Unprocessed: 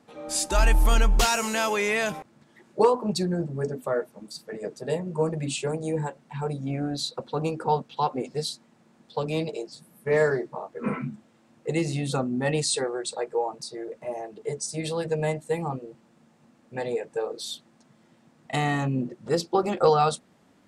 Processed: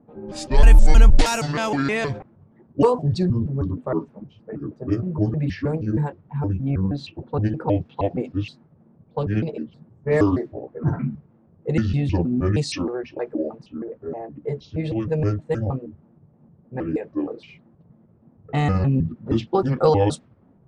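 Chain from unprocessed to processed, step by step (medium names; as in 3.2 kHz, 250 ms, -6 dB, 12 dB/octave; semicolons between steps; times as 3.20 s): pitch shift switched off and on -7 st, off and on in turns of 157 ms; level-controlled noise filter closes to 790 Hz, open at -18.5 dBFS; bass shelf 270 Hz +10.5 dB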